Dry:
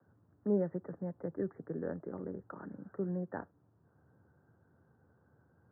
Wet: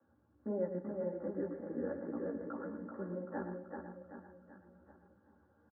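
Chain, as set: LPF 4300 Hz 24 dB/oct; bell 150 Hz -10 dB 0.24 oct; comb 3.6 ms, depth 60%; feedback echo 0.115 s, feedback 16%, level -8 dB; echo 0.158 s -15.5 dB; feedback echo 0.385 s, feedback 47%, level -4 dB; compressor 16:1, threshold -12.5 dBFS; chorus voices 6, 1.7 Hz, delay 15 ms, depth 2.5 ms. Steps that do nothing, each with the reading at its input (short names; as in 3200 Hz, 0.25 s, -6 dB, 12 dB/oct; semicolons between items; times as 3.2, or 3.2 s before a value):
LPF 4300 Hz: input band ends at 1600 Hz; compressor, threshold -12.5 dBFS: input peak -20.5 dBFS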